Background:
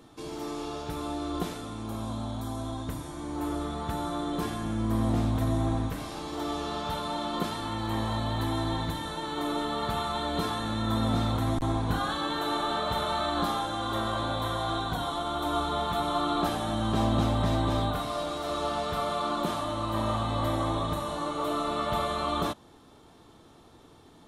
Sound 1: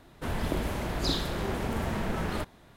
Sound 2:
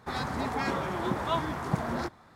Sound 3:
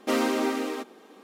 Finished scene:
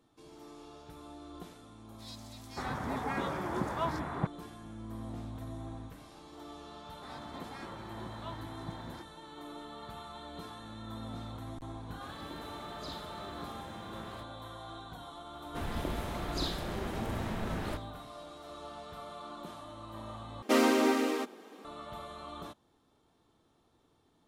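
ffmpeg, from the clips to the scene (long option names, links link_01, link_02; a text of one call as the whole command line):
ffmpeg -i bed.wav -i cue0.wav -i cue1.wav -i cue2.wav -filter_complex "[2:a]asplit=2[link_01][link_02];[1:a]asplit=2[link_03][link_04];[0:a]volume=-15.5dB[link_05];[link_01]acrossover=split=3300[link_06][link_07];[link_06]adelay=580[link_08];[link_08][link_07]amix=inputs=2:normalize=0[link_09];[link_03]highpass=72[link_10];[link_05]asplit=2[link_11][link_12];[link_11]atrim=end=20.424[link_13];[3:a]atrim=end=1.23,asetpts=PTS-STARTPTS,volume=-0.5dB[link_14];[link_12]atrim=start=21.646[link_15];[link_09]atrim=end=2.35,asetpts=PTS-STARTPTS,volume=-4dB,afade=type=in:duration=0.004:curve=hsin,afade=type=out:start_time=2.346:duration=0.004:curve=hsin,adelay=1920[link_16];[link_02]atrim=end=2.35,asetpts=PTS-STARTPTS,volume=-16dB,afade=type=in:duration=0.004:curve=hsin,afade=type=out:start_time=2.346:duration=0.004:curve=hsin,adelay=6950[link_17];[link_10]atrim=end=2.76,asetpts=PTS-STARTPTS,volume=-16dB,afade=type=in:duration=0.004:curve=hsin,afade=type=out:start_time=2.756:duration=0.004:curve=hsin,adelay=11790[link_18];[link_04]atrim=end=2.76,asetpts=PTS-STARTPTS,volume=-6dB,afade=type=in:duration=0.004:curve=hsin,afade=type=out:start_time=2.756:duration=0.004:curve=hsin,adelay=15330[link_19];[link_13][link_14]acrossfade=duration=0.004:curve1=hsin:curve2=hsin[link_20];[link_20][link_15]acrossfade=duration=0.004:curve1=hsin:curve2=hsin[link_21];[link_21][link_16][link_17][link_18][link_19]amix=inputs=5:normalize=0" out.wav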